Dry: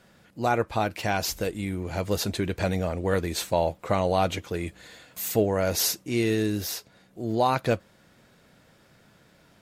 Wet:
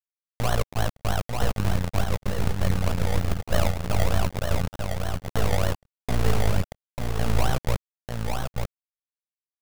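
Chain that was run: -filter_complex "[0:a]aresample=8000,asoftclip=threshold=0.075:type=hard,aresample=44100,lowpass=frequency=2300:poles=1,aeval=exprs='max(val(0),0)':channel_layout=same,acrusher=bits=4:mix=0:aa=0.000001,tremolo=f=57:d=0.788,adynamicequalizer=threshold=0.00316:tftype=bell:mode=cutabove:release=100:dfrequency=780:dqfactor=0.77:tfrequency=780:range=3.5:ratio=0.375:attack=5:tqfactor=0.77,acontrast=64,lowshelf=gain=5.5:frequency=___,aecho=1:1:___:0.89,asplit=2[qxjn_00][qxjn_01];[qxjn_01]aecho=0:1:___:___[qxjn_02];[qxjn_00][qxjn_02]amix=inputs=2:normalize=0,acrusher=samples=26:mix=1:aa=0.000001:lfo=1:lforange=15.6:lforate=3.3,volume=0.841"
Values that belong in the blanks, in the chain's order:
270, 1.5, 893, 0.596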